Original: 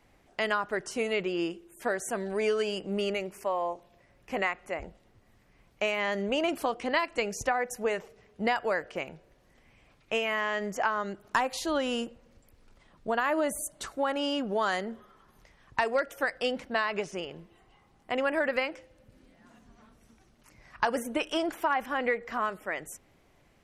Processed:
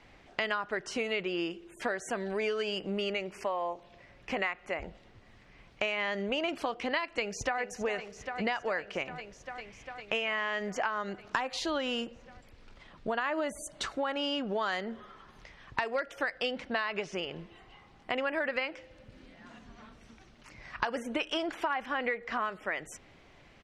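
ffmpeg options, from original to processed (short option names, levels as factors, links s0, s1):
-filter_complex "[0:a]asplit=2[s0][s1];[s1]afade=t=in:st=7.07:d=0.01,afade=t=out:st=7.6:d=0.01,aecho=0:1:400|800|1200|1600|2000|2400|2800|3200|3600|4000|4400|4800:0.211349|0.169079|0.135263|0.108211|0.0865685|0.0692548|0.0554038|0.0443231|0.0354585|0.0283668|0.0226934|0.0181547[s2];[s0][s2]amix=inputs=2:normalize=0,lowpass=3700,highshelf=f=2100:g=9.5,acompressor=threshold=0.0126:ratio=2.5,volume=1.68"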